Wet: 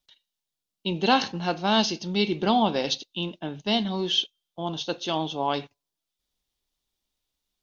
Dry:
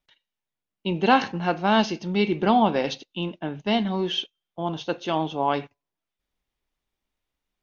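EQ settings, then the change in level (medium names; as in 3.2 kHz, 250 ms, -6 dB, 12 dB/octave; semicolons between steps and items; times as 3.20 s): resonant high shelf 2.9 kHz +8 dB, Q 1.5; -2.5 dB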